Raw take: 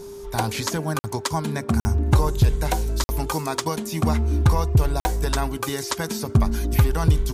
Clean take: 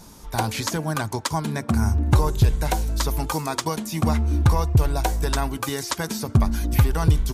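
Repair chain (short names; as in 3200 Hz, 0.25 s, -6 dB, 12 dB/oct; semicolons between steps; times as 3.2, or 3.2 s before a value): de-click; notch 400 Hz, Q 30; interpolate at 0.99/1.8/3.04/5, 50 ms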